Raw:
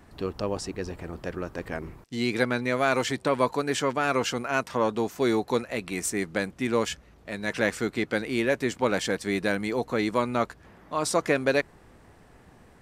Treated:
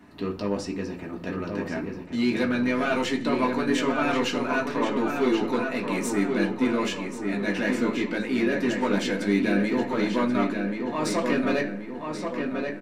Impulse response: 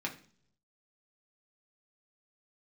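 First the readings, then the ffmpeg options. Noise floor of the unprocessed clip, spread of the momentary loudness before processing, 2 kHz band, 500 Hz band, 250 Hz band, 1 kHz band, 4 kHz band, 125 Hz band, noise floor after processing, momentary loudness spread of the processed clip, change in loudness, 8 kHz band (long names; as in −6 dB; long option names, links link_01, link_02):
−55 dBFS, 10 LU, +0.5 dB, 0.0 dB, +6.0 dB, 0.0 dB, +0.5 dB, +0.5 dB, −37 dBFS, 8 LU, +1.5 dB, −4.0 dB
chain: -filter_complex "[0:a]asoftclip=type=tanh:threshold=-19.5dB,asplit=2[link_01][link_02];[link_02]adelay=1082,lowpass=frequency=3300:poles=1,volume=-4.5dB,asplit=2[link_03][link_04];[link_04]adelay=1082,lowpass=frequency=3300:poles=1,volume=0.48,asplit=2[link_05][link_06];[link_06]adelay=1082,lowpass=frequency=3300:poles=1,volume=0.48,asplit=2[link_07][link_08];[link_08]adelay=1082,lowpass=frequency=3300:poles=1,volume=0.48,asplit=2[link_09][link_10];[link_10]adelay=1082,lowpass=frequency=3300:poles=1,volume=0.48,asplit=2[link_11][link_12];[link_12]adelay=1082,lowpass=frequency=3300:poles=1,volume=0.48[link_13];[link_01][link_03][link_05][link_07][link_09][link_11][link_13]amix=inputs=7:normalize=0[link_14];[1:a]atrim=start_sample=2205,asetrate=48510,aresample=44100[link_15];[link_14][link_15]afir=irnorm=-1:irlink=0"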